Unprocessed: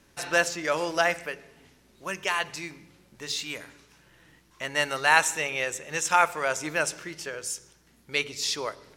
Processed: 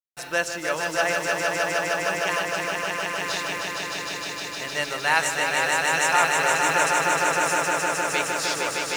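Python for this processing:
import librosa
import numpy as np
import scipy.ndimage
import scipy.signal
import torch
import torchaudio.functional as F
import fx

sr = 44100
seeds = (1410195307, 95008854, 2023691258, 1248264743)

y = fx.quant_dither(x, sr, seeds[0], bits=8, dither='none')
y = fx.echo_swell(y, sr, ms=154, loudest=5, wet_db=-4.0)
y = y * 10.0 ** (-1.5 / 20.0)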